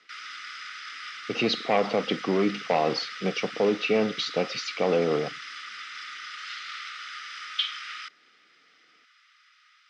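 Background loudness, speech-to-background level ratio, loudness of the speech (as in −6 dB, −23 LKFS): −36.5 LKFS, 10.0 dB, −26.5 LKFS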